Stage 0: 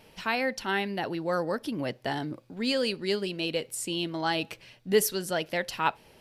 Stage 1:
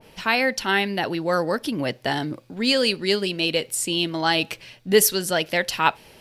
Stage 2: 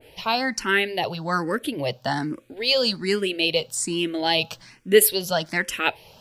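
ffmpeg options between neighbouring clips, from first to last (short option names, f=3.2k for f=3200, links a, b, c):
-af "adynamicequalizer=threshold=0.0126:dfrequency=1600:dqfactor=0.7:tfrequency=1600:tqfactor=0.7:attack=5:release=100:ratio=0.375:range=2:mode=boostabove:tftype=highshelf,volume=6dB"
-filter_complex "[0:a]asplit=2[a][b];[b]afreqshift=1.2[c];[a][c]amix=inputs=2:normalize=1,volume=2dB"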